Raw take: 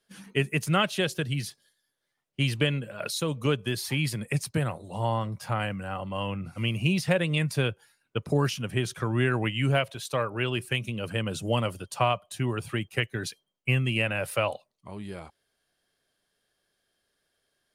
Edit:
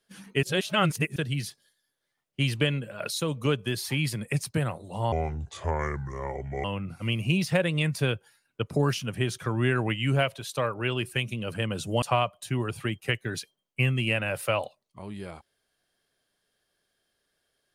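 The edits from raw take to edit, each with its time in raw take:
0.43–1.16 reverse
5.12–6.2 speed 71%
11.58–11.91 cut

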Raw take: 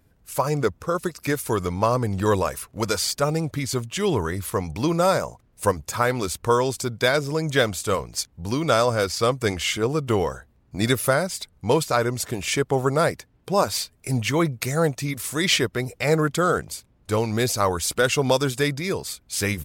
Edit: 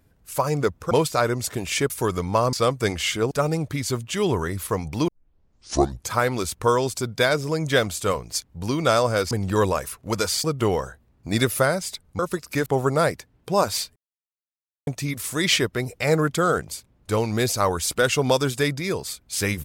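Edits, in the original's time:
0.91–1.38 swap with 11.67–12.66
2.01–3.14 swap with 9.14–9.92
4.91 tape start 1.04 s
13.96–14.87 mute

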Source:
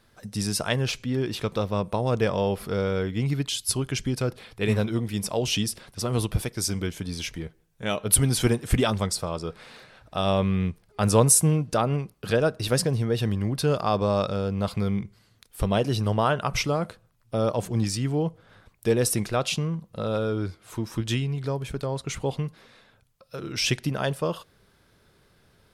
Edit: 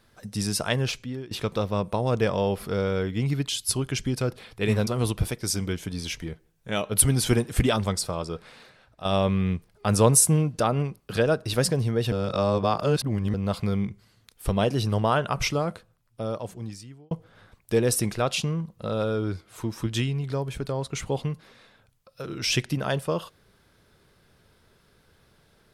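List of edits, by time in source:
0.85–1.31 fade out, to -18.5 dB
4.87–6.01 cut
9.38–10.19 fade out linear, to -9.5 dB
13.26–14.48 reverse
16.61–18.25 fade out

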